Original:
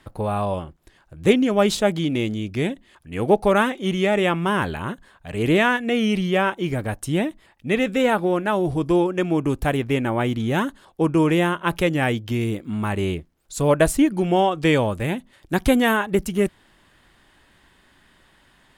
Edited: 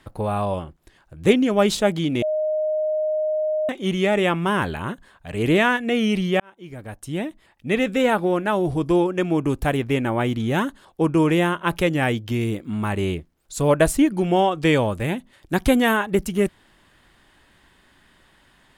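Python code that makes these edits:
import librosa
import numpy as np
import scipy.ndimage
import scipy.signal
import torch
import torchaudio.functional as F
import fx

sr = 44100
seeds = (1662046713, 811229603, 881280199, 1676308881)

y = fx.edit(x, sr, fx.bleep(start_s=2.22, length_s=1.47, hz=618.0, db=-19.5),
    fx.fade_in_span(start_s=6.4, length_s=1.39), tone=tone)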